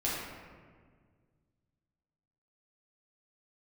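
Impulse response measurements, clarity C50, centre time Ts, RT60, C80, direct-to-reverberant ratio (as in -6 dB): -1.0 dB, 96 ms, 1.7 s, 1.5 dB, -7.5 dB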